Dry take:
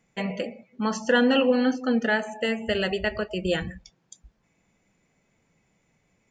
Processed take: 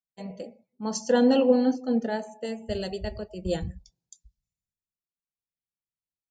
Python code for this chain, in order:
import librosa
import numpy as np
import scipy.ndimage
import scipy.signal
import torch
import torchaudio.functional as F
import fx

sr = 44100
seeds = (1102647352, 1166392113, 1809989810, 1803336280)

y = fx.band_shelf(x, sr, hz=1900.0, db=-12.0, octaves=1.7)
y = fx.band_widen(y, sr, depth_pct=100)
y = y * 10.0 ** (-2.5 / 20.0)